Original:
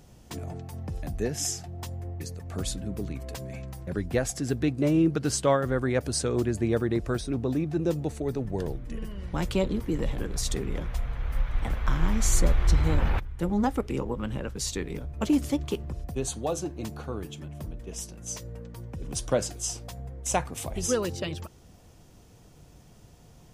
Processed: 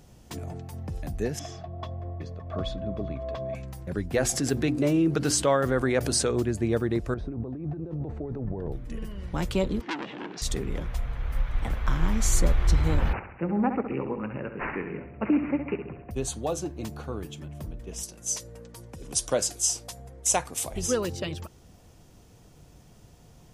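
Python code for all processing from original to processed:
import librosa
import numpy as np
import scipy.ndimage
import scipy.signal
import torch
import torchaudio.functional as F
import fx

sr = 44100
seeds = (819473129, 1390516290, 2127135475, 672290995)

y = fx.chain(x, sr, fx.air_absorb(metres=260.0),
    fx.small_body(hz=(640.0, 1100.0, 3400.0), ring_ms=70, db=18), at=(1.39, 3.55))
y = fx.chain(y, sr, fx.low_shelf(hz=180.0, db=-6.0),
    fx.hum_notches(base_hz=60, count=6),
    fx.env_flatten(amount_pct=50), at=(4.14, 6.31))
y = fx.chain(y, sr, fx.lowpass(hz=1200.0, slope=12),
    fx.over_compress(threshold_db=-33.0, ratio=-1.0), at=(7.14, 8.72))
y = fx.chain(y, sr, fx.cabinet(low_hz=190.0, low_slope=24, high_hz=5300.0, hz=(330.0, 550.0, 1700.0, 2800.0), db=(7, -6, 4, 7)),
    fx.transformer_sat(knee_hz=2400.0), at=(9.81, 10.42))
y = fx.chain(y, sr, fx.highpass(hz=140.0, slope=12),
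    fx.echo_feedback(ms=67, feedback_pct=56, wet_db=-8.5),
    fx.resample_bad(factor=8, down='none', up='filtered'), at=(13.13, 16.11))
y = fx.chain(y, sr, fx.brickwall_lowpass(high_hz=13000.0),
    fx.bass_treble(bass_db=-7, treble_db=8), at=(18.03, 20.74))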